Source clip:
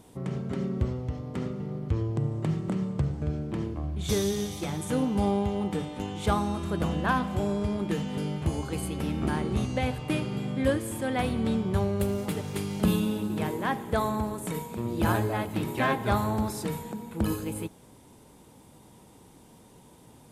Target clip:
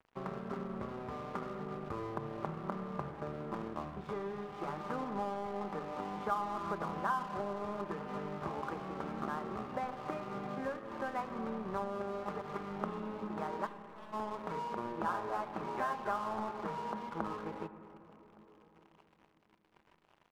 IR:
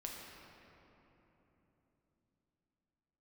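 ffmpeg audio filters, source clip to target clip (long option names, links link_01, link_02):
-filter_complex "[0:a]highpass=frequency=840:poles=1,aemphasis=mode=reproduction:type=50kf,aecho=1:1:5:0.41,acompressor=threshold=-42dB:ratio=6,asplit=3[link_01][link_02][link_03];[link_01]afade=type=out:start_time=13.65:duration=0.02[link_04];[link_02]aeval=exprs='(tanh(562*val(0)+0.6)-tanh(0.6))/562':channel_layout=same,afade=type=in:start_time=13.65:duration=0.02,afade=type=out:start_time=14.12:duration=0.02[link_05];[link_03]afade=type=in:start_time=14.12:duration=0.02[link_06];[link_04][link_05][link_06]amix=inputs=3:normalize=0,lowpass=frequency=1200:width_type=q:width=2.6,aeval=exprs='sgn(val(0))*max(abs(val(0))-0.00224,0)':channel_layout=same,asplit=2[link_07][link_08];[link_08]adelay=1166,volume=-24dB,highshelf=frequency=4000:gain=-26.2[link_09];[link_07][link_09]amix=inputs=2:normalize=0,asplit=2[link_10][link_11];[1:a]atrim=start_sample=2205,lowpass=2000[link_12];[link_11][link_12]afir=irnorm=-1:irlink=0,volume=-5dB[link_13];[link_10][link_13]amix=inputs=2:normalize=0,volume=4dB"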